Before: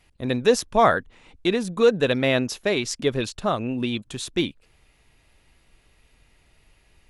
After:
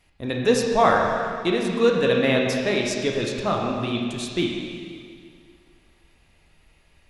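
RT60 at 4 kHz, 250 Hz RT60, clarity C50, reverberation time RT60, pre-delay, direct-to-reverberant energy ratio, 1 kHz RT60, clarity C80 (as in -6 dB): 2.1 s, 2.3 s, 1.5 dB, 2.2 s, 8 ms, -0.5 dB, 2.2 s, 2.5 dB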